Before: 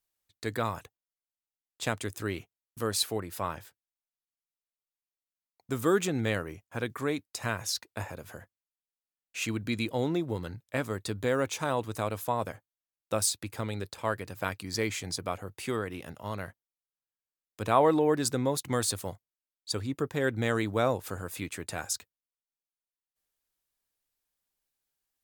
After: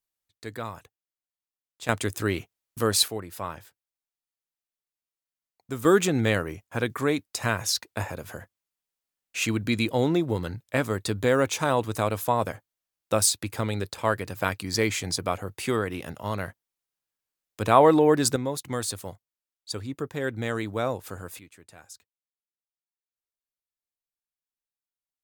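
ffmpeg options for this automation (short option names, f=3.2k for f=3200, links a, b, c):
-af "asetnsamples=n=441:p=0,asendcmd='1.89 volume volume 7dB;3.08 volume volume -0.5dB;5.85 volume volume 6dB;18.36 volume volume -1dB;21.39 volume volume -14dB',volume=-4dB"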